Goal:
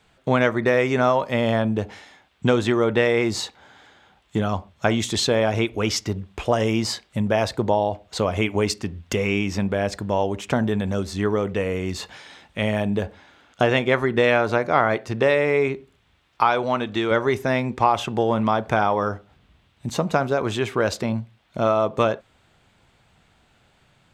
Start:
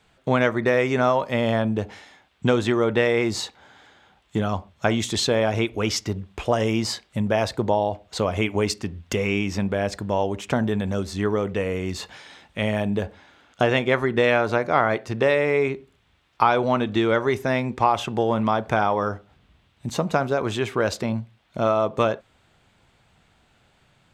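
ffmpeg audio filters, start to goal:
-filter_complex "[0:a]asettb=1/sr,asplit=3[a][b][c];[a]atrim=end=16.414[d];[b]atrim=start=16.41:end=17.11,asetpts=PTS-STARTPTS,afade=t=in:d=0.004:c=qsin,afade=t=out:st=0.696:d=0.004:c=qsin,lowshelf=f=470:g=-6[e];[c]atrim=start=17.106[f];[d][e]acrossfade=d=0.004:c1=hsin:c2=qsin[g];[g][f]acrossfade=d=0.004:c1=qsin:c2=hsin,volume=1dB"

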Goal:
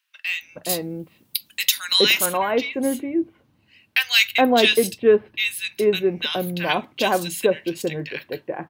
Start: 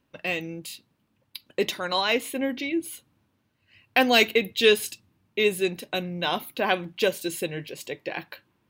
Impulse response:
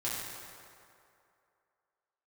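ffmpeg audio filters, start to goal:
-filter_complex "[0:a]asettb=1/sr,asplit=3[a][b][c];[a]atrim=end=0.694[d];[b]atrim=start=0.69:end=2.26,asetpts=PTS-STARTPTS,afade=t=in:d=0.004:c=qsin,afade=t=out:st=1.566:d=0.004:c=qsin,aemphasis=mode=production:type=75kf[e];[c]atrim=start=2.256[f];[d][e]acrossfade=d=0.004:c1=hsin:c2=qsin[g];[g][f]acrossfade=d=0.004:c1=qsin:c2=hsin,asettb=1/sr,asplit=3[h][i][j];[h]atrim=end=4.694[k];[i]atrim=start=4.69:end=5.79,asetpts=PTS-STARTPTS,afade=t=in:d=0.004:c=qsin,afade=t=out:st=1.096:d=0.004:c=qsin,bandreject=f=7k:w=6.7[l];[j]atrim=start=5.786[m];[k][l]acrossfade=d=0.004:c1=hsin:c2=qsin[n];[n][m]acrossfade=d=0.004:c1=qsin:c2=hsin,acrossover=split=1500[o][p];[o]adelay=420[q];[q][p]amix=inputs=2:normalize=0,volume=5dB"

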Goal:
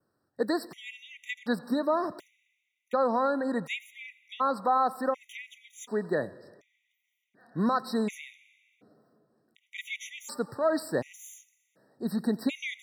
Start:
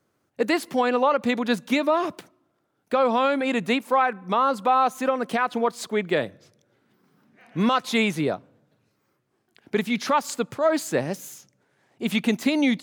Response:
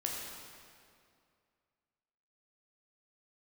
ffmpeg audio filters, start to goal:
-filter_complex "[0:a]adynamicequalizer=threshold=0.00501:dfrequency=3400:dqfactor=1.8:tfrequency=3400:tqfactor=1.8:attack=5:release=100:ratio=0.375:range=2:mode=cutabove:tftype=bell,asplit=2[a][b];[1:a]atrim=start_sample=2205,adelay=88[c];[b][c]afir=irnorm=-1:irlink=0,volume=-21.5dB[d];[a][d]amix=inputs=2:normalize=0,afftfilt=real='re*gt(sin(2*PI*0.68*pts/sr)*(1-2*mod(floor(b*sr/1024/1900),2)),0)':imag='im*gt(sin(2*PI*0.68*pts/sr)*(1-2*mod(floor(b*sr/1024/1900),2)),0)':win_size=1024:overlap=0.75,volume=-5dB"

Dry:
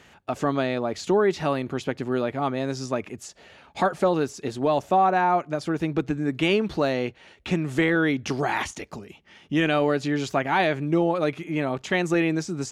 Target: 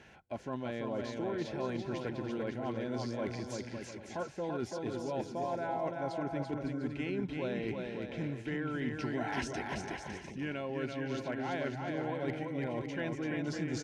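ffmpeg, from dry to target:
-af "highshelf=f=5.4k:g=-8.5,areverse,acompressor=threshold=-30dB:ratio=20,areverse,asoftclip=type=hard:threshold=-23.5dB,aecho=1:1:310|511.5|642.5|727.6|782.9:0.631|0.398|0.251|0.158|0.1,asetrate=40517,aresample=44100,asuperstop=centerf=1200:order=8:qfactor=5.8,volume=-3.5dB"

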